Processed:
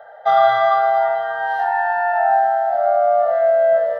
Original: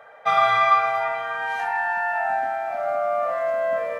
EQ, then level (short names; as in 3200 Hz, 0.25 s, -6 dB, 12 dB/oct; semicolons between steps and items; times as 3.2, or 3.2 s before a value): bell 760 Hz +10.5 dB 1.2 oct; fixed phaser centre 1600 Hz, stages 8; 0.0 dB